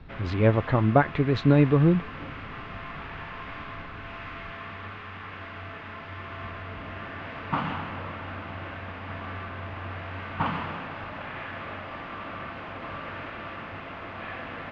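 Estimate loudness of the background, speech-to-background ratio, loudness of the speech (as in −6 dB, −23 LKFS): −36.5 LKFS, 14.0 dB, −22.5 LKFS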